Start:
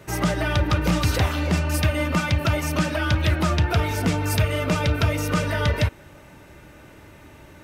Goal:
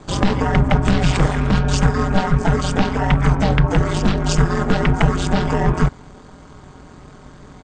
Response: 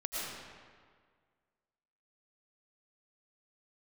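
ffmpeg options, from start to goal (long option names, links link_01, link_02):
-af "aeval=exprs='val(0)*sin(2*PI*170*n/s)':channel_layout=same,asetrate=24750,aresample=44100,atempo=1.7818,volume=9dB"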